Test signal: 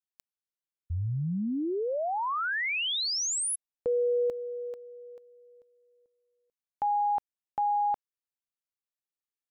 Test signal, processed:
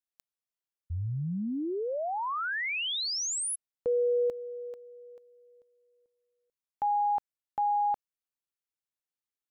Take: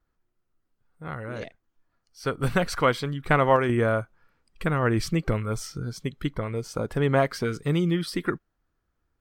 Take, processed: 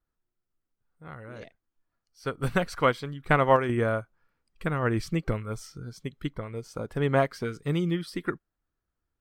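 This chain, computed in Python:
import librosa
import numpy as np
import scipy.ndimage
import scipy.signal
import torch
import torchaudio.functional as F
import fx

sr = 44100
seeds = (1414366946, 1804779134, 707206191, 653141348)

y = fx.upward_expand(x, sr, threshold_db=-32.0, expansion=1.5)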